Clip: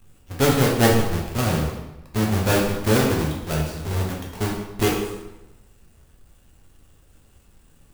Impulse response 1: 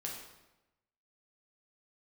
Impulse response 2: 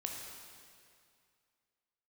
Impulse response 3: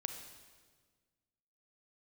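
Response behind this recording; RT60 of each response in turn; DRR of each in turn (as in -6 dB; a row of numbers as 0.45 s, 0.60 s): 1; 1.0 s, 2.3 s, 1.5 s; -2.5 dB, 0.0 dB, 6.0 dB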